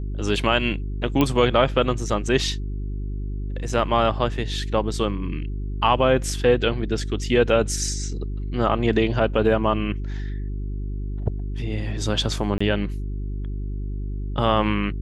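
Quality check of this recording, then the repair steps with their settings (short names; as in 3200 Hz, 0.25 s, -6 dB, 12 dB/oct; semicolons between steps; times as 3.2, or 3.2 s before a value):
hum 50 Hz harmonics 8 -28 dBFS
1.21 pop -7 dBFS
12.58–12.61 gap 25 ms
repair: de-click; de-hum 50 Hz, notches 8; interpolate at 12.58, 25 ms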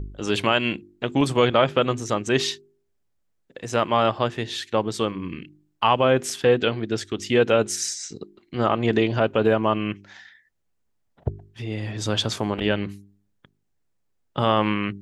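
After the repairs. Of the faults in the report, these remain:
none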